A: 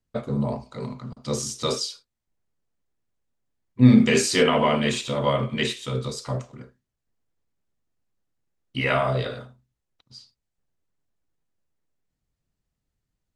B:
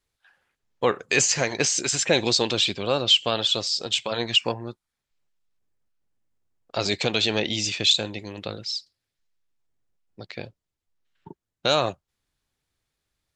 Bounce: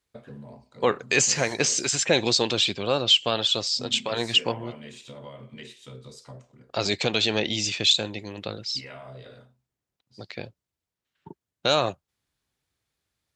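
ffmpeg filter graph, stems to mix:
-filter_complex "[0:a]equalizer=f=1.2k:w=4:g=-5,acompressor=threshold=-28dB:ratio=5,volume=-11.5dB[a];[1:a]volume=-0.5dB[b];[a][b]amix=inputs=2:normalize=0,highpass=56"

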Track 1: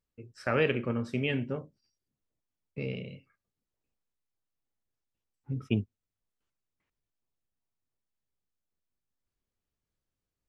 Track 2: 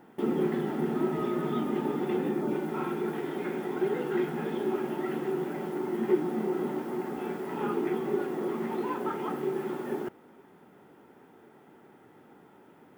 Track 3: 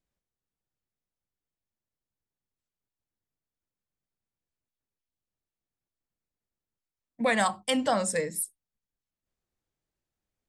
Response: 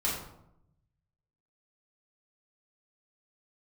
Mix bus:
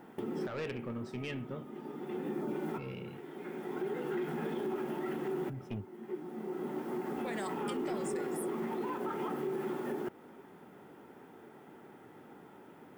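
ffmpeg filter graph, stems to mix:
-filter_complex "[0:a]asoftclip=type=tanh:threshold=-25.5dB,volume=-4.5dB,asplit=2[a][b];[1:a]volume=1.5dB[c];[2:a]volume=-6dB[d];[b]apad=whole_len=572145[e];[c][e]sidechaincompress=threshold=-55dB:ratio=12:attack=24:release=1020[f];[a][d]amix=inputs=2:normalize=0,acompressor=threshold=-40dB:ratio=1.5,volume=0dB[g];[f][g]amix=inputs=2:normalize=0,asoftclip=type=tanh:threshold=-17.5dB,alimiter=level_in=4.5dB:limit=-24dB:level=0:latency=1:release=151,volume=-4.5dB"

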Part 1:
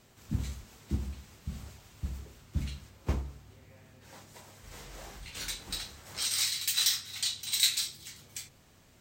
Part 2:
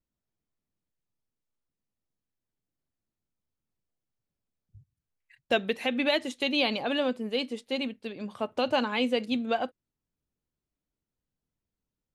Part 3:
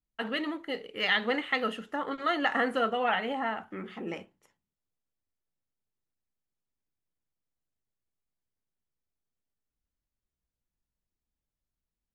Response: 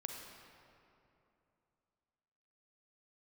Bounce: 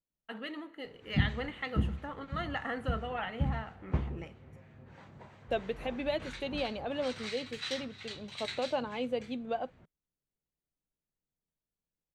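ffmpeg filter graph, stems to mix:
-filter_complex "[0:a]lowpass=2k,acrossover=split=1500[a][b];[a]aeval=exprs='val(0)*(1-0.5/2+0.5/2*cos(2*PI*3*n/s))':c=same[c];[b]aeval=exprs='val(0)*(1-0.5/2-0.5/2*cos(2*PI*3*n/s))':c=same[d];[c][d]amix=inputs=2:normalize=0,adelay=850,volume=2.5dB[e];[1:a]equalizer=f=560:t=o:w=2:g=9,volume=-14dB[f];[2:a]adelay=100,volume=-10.5dB,asplit=2[g][h];[h]volume=-12.5dB[i];[3:a]atrim=start_sample=2205[j];[i][j]afir=irnorm=-1:irlink=0[k];[e][f][g][k]amix=inputs=4:normalize=0,equalizer=f=160:w=2.3:g=6,bandreject=f=5.2k:w=14"

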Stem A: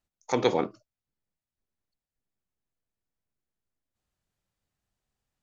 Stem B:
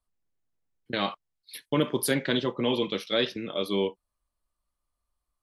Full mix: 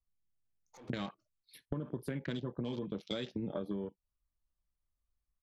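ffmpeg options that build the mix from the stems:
-filter_complex "[0:a]alimiter=limit=-20dB:level=0:latency=1:release=88,asoftclip=type=tanh:threshold=-34dB,adelay=450,volume=-17dB[a];[1:a]afwtdn=0.02,bass=f=250:g=13,treble=f=4k:g=-1,acompressor=threshold=-30dB:ratio=12,volume=2dB,asplit=2[b][c];[c]apad=whole_len=259213[d];[a][d]sidechaincompress=threshold=-45dB:ratio=8:attack=21:release=200[e];[e][b]amix=inputs=2:normalize=0,acompressor=threshold=-36dB:ratio=3"

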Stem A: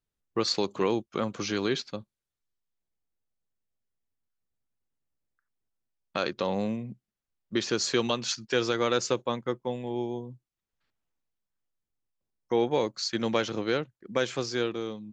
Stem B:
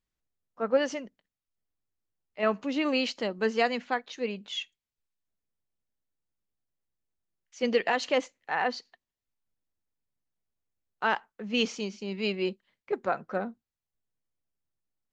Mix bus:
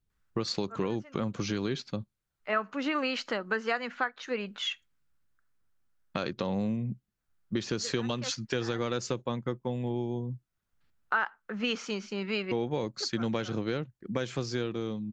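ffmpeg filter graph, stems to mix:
-filter_complex "[0:a]bass=f=250:g=10,treble=f=4k:g=-1,volume=0dB,asplit=2[a][b];[1:a]equalizer=f=1.4k:w=1.6:g=14,adelay=100,volume=1.5dB[c];[b]apad=whole_len=671422[d];[c][d]sidechaincompress=threshold=-46dB:ratio=4:attack=8:release=293[e];[a][e]amix=inputs=2:normalize=0,acompressor=threshold=-29dB:ratio=3"

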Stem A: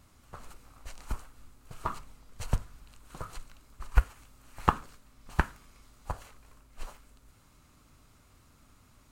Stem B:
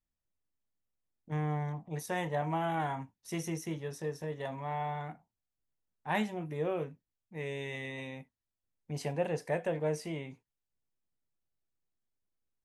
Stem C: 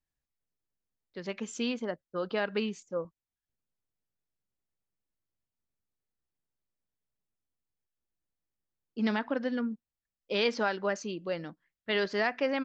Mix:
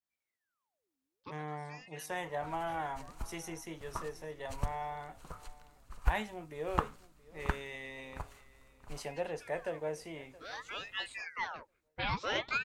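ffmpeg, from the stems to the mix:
-filter_complex "[0:a]adelay=2100,volume=-7dB,asplit=2[a][b];[b]volume=-17dB[c];[1:a]highpass=f=510:p=1,adynamicequalizer=threshold=0.00355:dfrequency=2000:dqfactor=0.7:tfrequency=2000:tqfactor=0.7:attack=5:release=100:ratio=0.375:range=2:mode=cutabove:tftype=highshelf,volume=-1.5dB,asplit=3[d][e][f];[e]volume=-20.5dB[g];[2:a]flanger=delay=16:depth=2.3:speed=0.22,aeval=exprs='val(0)*sin(2*PI*1300*n/s+1300*0.8/0.55*sin(2*PI*0.55*n/s))':c=same,adelay=100,volume=1dB[h];[f]apad=whole_len=561840[i];[h][i]sidechaincompress=threshold=-52dB:ratio=16:attack=5.9:release=1050[j];[c][g]amix=inputs=2:normalize=0,aecho=0:1:672|1344|2016|2688:1|0.24|0.0576|0.0138[k];[a][d][j][k]amix=inputs=4:normalize=0"

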